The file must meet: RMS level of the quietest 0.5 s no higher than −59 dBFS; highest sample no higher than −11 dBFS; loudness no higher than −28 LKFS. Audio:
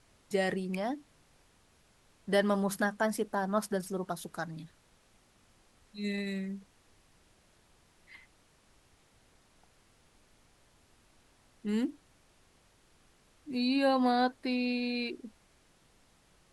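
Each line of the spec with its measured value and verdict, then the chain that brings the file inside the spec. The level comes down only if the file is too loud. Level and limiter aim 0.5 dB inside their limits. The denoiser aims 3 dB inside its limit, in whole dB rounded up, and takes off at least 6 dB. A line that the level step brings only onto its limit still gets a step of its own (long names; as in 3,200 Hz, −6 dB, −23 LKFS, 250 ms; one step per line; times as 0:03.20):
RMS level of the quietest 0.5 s −66 dBFS: in spec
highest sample −15.5 dBFS: in spec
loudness −32.5 LKFS: in spec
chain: no processing needed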